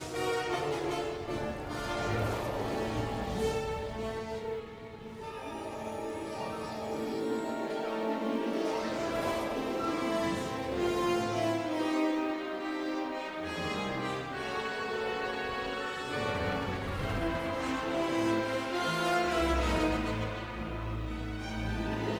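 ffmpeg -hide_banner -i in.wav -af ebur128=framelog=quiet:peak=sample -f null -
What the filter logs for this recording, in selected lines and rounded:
Integrated loudness:
  I:         -33.4 LUFS
  Threshold: -43.5 LUFS
Loudness range:
  LRA:         6.0 LU
  Threshold: -53.4 LUFS
  LRA low:   -37.0 LUFS
  LRA high:  -31.0 LUFS
Sample peak:
  Peak:      -17.0 dBFS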